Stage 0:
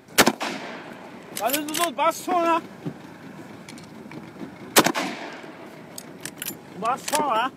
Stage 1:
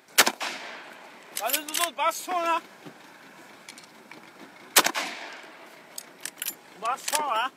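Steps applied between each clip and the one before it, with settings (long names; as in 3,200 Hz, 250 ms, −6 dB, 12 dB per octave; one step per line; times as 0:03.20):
high-pass filter 1,200 Hz 6 dB per octave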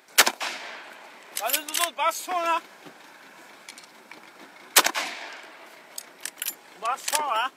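low-shelf EQ 220 Hz −11.5 dB
level +1.5 dB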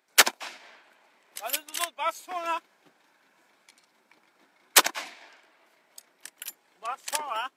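expander for the loud parts 1.5 to 1, over −44 dBFS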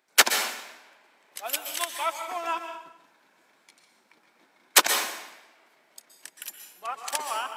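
dense smooth reverb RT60 0.78 s, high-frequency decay 0.9×, pre-delay 110 ms, DRR 6 dB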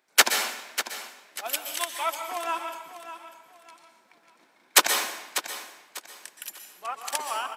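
repeating echo 595 ms, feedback 29%, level −11.5 dB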